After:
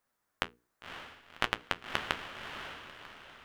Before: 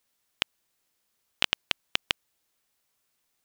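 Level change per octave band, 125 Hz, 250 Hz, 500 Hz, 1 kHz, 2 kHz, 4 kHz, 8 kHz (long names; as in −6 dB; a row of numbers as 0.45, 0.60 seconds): +2.0, +2.0, +2.5, +4.0, −2.0, −9.0, −8.0 decibels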